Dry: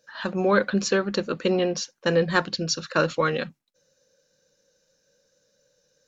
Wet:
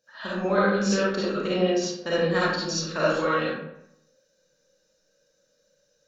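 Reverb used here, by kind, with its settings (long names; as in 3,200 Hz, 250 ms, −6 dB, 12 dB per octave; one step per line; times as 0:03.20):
comb and all-pass reverb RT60 0.8 s, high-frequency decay 0.6×, pre-delay 15 ms, DRR −8.5 dB
level −9 dB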